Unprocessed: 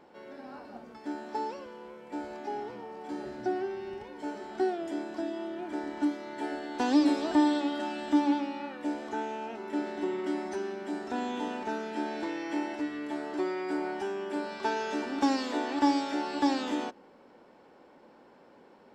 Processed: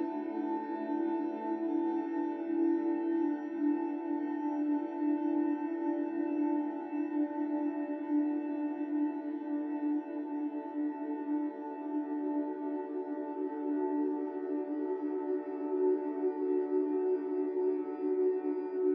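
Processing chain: spectral contrast enhancement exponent 2; two-band feedback delay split 510 Hz, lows 120 ms, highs 735 ms, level -11 dB; Paulstretch 14×, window 1.00 s, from 12.23 s

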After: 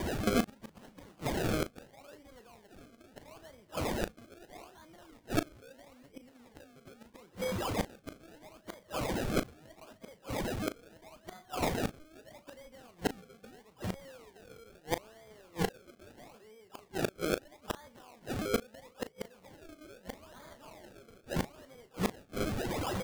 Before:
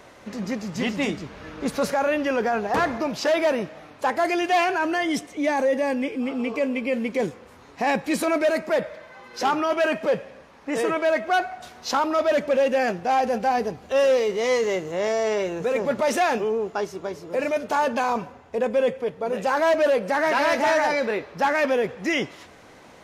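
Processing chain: high-pass 89 Hz 24 dB/octave; high-order bell 3.4 kHz +12.5 dB 1.1 oct; whistle 5 kHz -38 dBFS; in parallel at -2 dB: compression 12:1, threshold -30 dBFS, peak gain reduction 17.5 dB; on the sum: decimation with a swept rate 32×, swing 100% 0.77 Hz; inverted gate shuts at -18 dBFS, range -35 dB; doubling 37 ms -12 dB

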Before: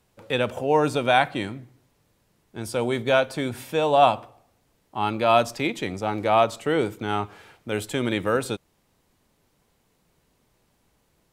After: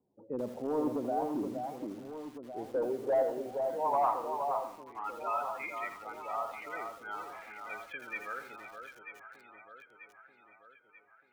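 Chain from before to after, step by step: 4.00–5.06 s: treble shelf 2.9 kHz -6.5 dB; spectral gate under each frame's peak -15 dB strong; in parallel at -2.5 dB: compression 6:1, threshold -30 dBFS, peak gain reduction 16 dB; on the sum: band-pass sweep 290 Hz -> 2.2 kHz, 2.09–4.93 s; hard clipper -22.5 dBFS, distortion -10 dB; low-pass sweep 940 Hz -> 2 kHz, 3.10–6.96 s; echo whose repeats swap between lows and highs 469 ms, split 1.4 kHz, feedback 71%, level -5 dB; on a send at -20.5 dB: reverberation RT60 1.6 s, pre-delay 3 ms; on the sum: bit-crushed delay 83 ms, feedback 35%, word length 7-bit, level -9 dB; trim -7 dB

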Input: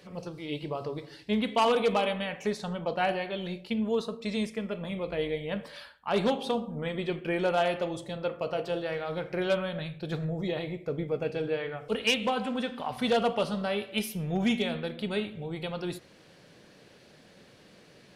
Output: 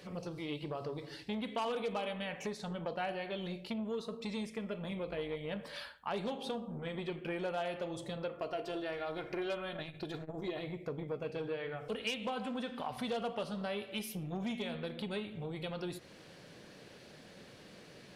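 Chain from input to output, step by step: 8.38–10.61 s: comb 2.9 ms, depth 55%; compression 3:1, threshold -38 dBFS, peak gain reduction 13 dB; transformer saturation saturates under 680 Hz; trim +1 dB

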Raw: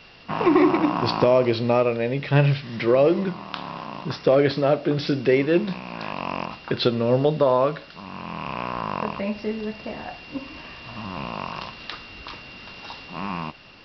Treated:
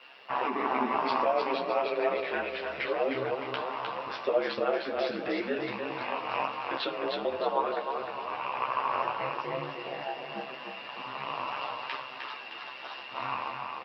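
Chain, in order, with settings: in parallel at -0.5 dB: compressor with a negative ratio -25 dBFS, ratio -1; on the sum: Chebyshev high-pass 160 Hz, order 5; three-band isolator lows -24 dB, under 410 Hz, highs -15 dB, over 3.2 kHz; doubling 15 ms -7 dB; bit crusher 12-bit; ring modulator 67 Hz; on a send: feedback delay 307 ms, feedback 46%, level -4 dB; on the sum: chorus voices 6, 0.4 Hz, delay 12 ms, depth 4.4 ms; trim -3.5 dB

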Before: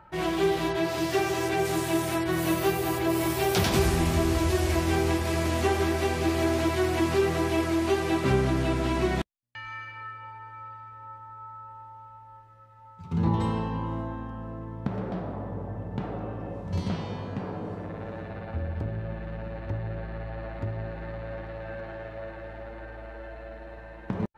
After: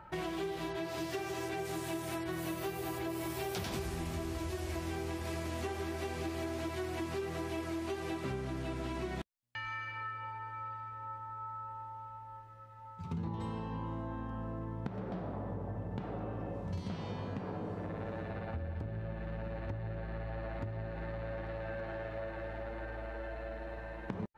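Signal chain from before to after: compression, threshold -36 dBFS, peak gain reduction 16.5 dB

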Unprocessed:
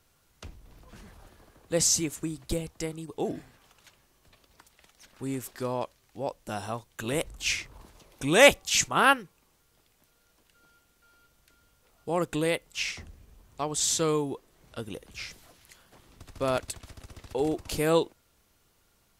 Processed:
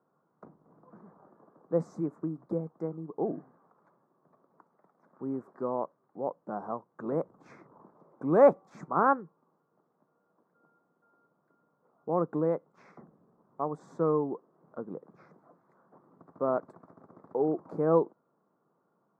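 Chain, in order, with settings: elliptic band-pass 160–1200 Hz, stop band 40 dB

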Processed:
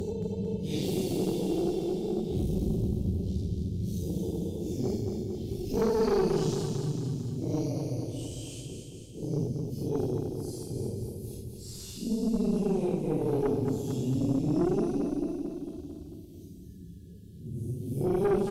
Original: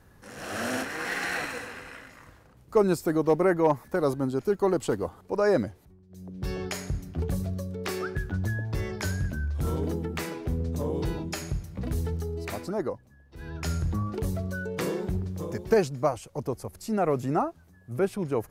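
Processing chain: Chebyshev band-stop 380–3200 Hz, order 3; treble shelf 5.5 kHz -4 dB; de-hum 57.81 Hz, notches 6; Paulstretch 5.4×, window 0.05 s, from 14.65 s; valve stage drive 24 dB, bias 0.6; feedback delay 224 ms, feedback 49%, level -6.5 dB; three bands compressed up and down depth 40%; trim +4.5 dB

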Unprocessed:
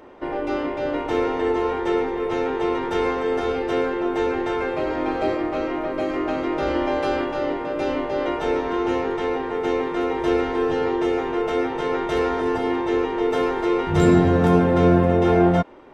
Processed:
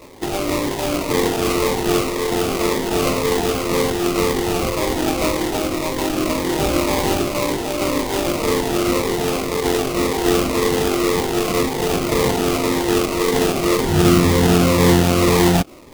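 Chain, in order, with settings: resonant high shelf 2.4 kHz -9.5 dB, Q 3; in parallel at +2 dB: peak limiter -11 dBFS, peak gain reduction 7.5 dB; on the sum: sample-rate reducer 1.6 kHz, jitter 20%; Shepard-style phaser falling 1.9 Hz; trim -2.5 dB

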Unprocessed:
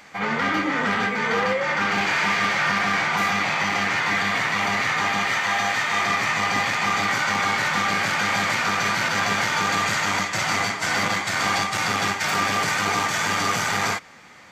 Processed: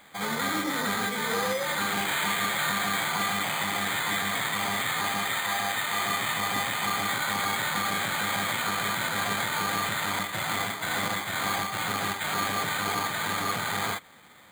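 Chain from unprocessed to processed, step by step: careless resampling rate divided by 8×, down filtered, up hold; trim -5.5 dB

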